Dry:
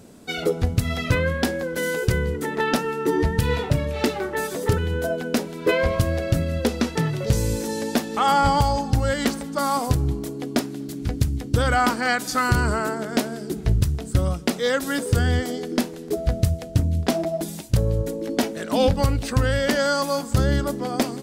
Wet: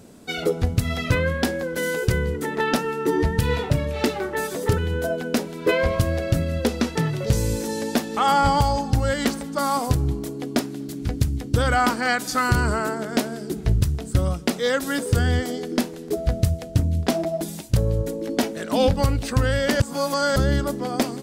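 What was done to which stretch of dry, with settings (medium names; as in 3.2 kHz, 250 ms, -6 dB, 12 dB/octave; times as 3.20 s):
19.80–20.36 s: reverse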